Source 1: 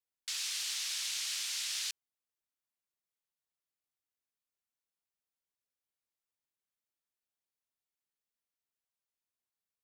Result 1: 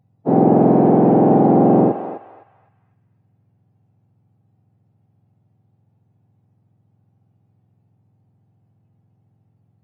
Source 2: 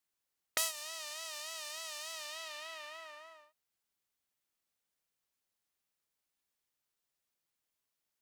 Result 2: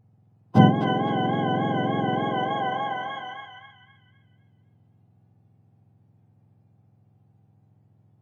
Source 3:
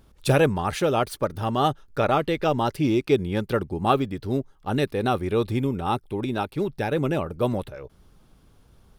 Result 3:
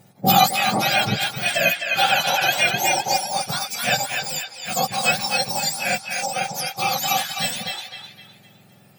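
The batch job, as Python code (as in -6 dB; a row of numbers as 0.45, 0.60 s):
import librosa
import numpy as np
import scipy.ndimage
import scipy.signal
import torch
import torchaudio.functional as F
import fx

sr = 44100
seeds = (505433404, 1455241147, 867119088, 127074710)

p1 = fx.octave_mirror(x, sr, pivot_hz=1400.0)
p2 = fx.peak_eq(p1, sr, hz=2600.0, db=2.5, octaves=0.37)
p3 = p2 + fx.echo_banded(p2, sr, ms=256, feedback_pct=41, hz=2200.0, wet_db=-3.5, dry=0)
p4 = fx.hpss(p3, sr, part='percussive', gain_db=-11)
p5 = fx.peak_eq(p4, sr, hz=780.0, db=12.5, octaves=0.34)
y = p5 * 10.0 ** (-2 / 20.0) / np.max(np.abs(p5))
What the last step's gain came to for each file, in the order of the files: +20.0, +15.0, +11.0 dB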